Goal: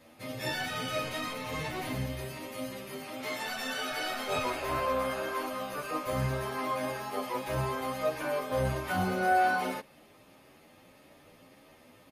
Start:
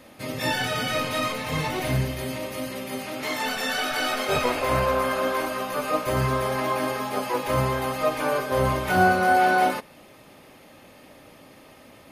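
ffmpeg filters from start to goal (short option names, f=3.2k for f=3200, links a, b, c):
-filter_complex "[0:a]asplit=2[a][b];[b]adelay=10.3,afreqshift=1.7[c];[a][c]amix=inputs=2:normalize=1,volume=-5dB"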